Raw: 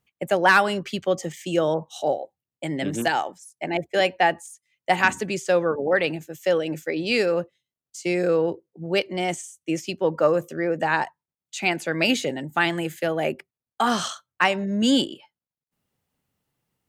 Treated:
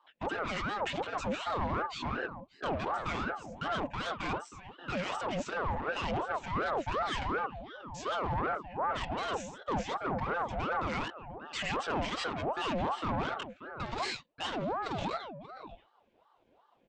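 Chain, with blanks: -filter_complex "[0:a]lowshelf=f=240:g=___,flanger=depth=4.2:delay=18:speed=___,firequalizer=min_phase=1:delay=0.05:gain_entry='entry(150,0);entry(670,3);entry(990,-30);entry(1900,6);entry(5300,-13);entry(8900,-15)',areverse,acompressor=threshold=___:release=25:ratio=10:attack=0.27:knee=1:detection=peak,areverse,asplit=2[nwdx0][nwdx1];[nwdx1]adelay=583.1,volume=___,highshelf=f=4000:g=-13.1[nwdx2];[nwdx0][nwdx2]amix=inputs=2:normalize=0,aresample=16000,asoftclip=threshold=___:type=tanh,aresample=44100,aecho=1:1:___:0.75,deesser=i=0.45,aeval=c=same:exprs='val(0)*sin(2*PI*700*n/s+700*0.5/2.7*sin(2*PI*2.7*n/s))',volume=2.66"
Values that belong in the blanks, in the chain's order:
11, 2.5, 0.0224, 0.141, 0.0112, 6.2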